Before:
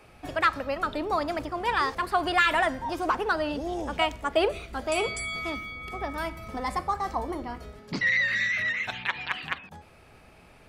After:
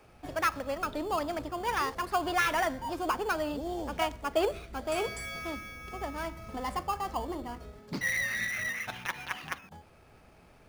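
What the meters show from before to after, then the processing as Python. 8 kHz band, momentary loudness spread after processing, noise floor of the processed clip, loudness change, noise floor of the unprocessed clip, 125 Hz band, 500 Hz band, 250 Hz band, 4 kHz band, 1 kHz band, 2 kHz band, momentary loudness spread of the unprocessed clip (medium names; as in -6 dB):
+1.5 dB, 10 LU, -58 dBFS, -5.0 dB, -54 dBFS, -3.0 dB, -3.5 dB, -3.5 dB, -6.0 dB, -4.5 dB, -6.5 dB, 12 LU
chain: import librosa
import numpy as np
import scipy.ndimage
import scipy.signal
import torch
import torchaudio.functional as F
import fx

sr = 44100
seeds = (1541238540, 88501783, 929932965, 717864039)

p1 = fx.sample_hold(x, sr, seeds[0], rate_hz=3900.0, jitter_pct=0)
p2 = x + (p1 * librosa.db_to_amplitude(-5.5))
y = p2 * librosa.db_to_amplitude(-7.0)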